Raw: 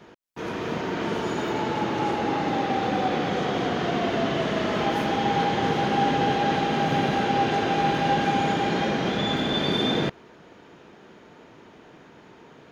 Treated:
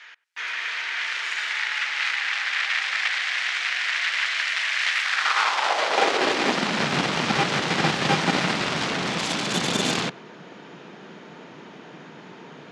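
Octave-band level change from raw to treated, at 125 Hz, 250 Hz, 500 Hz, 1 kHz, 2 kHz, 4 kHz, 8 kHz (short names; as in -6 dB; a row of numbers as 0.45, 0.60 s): -3.5 dB, -4.5 dB, -4.0 dB, -3.0 dB, +8.0 dB, +5.5 dB, n/a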